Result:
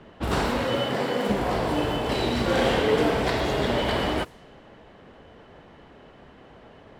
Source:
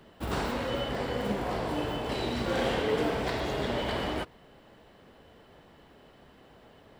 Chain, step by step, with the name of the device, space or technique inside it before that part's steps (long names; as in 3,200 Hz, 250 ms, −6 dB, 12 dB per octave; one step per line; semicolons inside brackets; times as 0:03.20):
cassette deck with a dynamic noise filter (white noise bed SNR 33 dB; low-pass that shuts in the quiet parts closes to 2,500 Hz, open at −29.5 dBFS)
0:00.64–0:01.28: high-pass filter 69 Hz → 190 Hz 24 dB per octave
level +6.5 dB